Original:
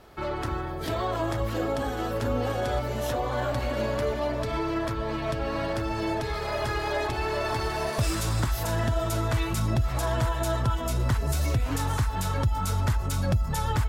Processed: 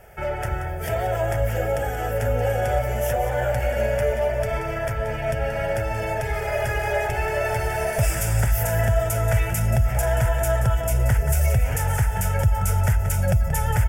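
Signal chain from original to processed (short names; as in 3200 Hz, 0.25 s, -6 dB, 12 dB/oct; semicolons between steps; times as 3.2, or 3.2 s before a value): high shelf 10000 Hz +6.5 dB; fixed phaser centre 1100 Hz, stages 6; on a send: echo 0.18 s -11 dB; on the sum: gain +6.5 dB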